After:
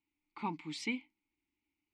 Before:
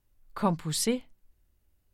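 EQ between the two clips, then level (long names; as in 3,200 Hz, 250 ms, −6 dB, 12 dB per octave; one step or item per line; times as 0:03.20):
formant filter u
flat-topped bell 3,300 Hz +12.5 dB 2.8 octaves
+2.0 dB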